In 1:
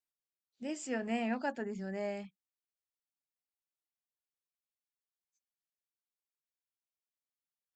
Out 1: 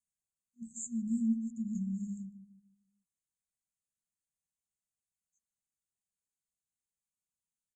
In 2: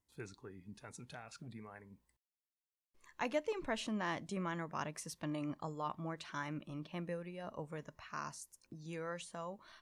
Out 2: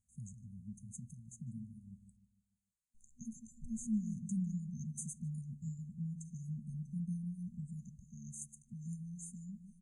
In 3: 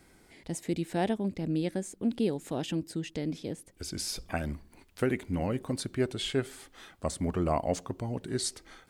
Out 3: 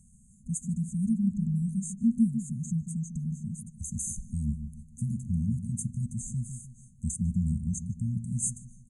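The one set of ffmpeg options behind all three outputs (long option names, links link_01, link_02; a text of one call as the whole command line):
ffmpeg -i in.wav -filter_complex "[0:a]afftfilt=real='re*(1-between(b*sr/4096,240,6200))':imag='im*(1-between(b*sr/4096,240,6200))':win_size=4096:overlap=0.75,asplit=2[link_01][link_02];[link_02]adelay=151,lowpass=frequency=1000:poles=1,volume=-9dB,asplit=2[link_03][link_04];[link_04]adelay=151,lowpass=frequency=1000:poles=1,volume=0.42,asplit=2[link_05][link_06];[link_06]adelay=151,lowpass=frequency=1000:poles=1,volume=0.42,asplit=2[link_07][link_08];[link_08]adelay=151,lowpass=frequency=1000:poles=1,volume=0.42,asplit=2[link_09][link_10];[link_10]adelay=151,lowpass=frequency=1000:poles=1,volume=0.42[link_11];[link_01][link_03][link_05][link_07][link_09][link_11]amix=inputs=6:normalize=0,aresample=22050,aresample=44100,volume=5.5dB" out.wav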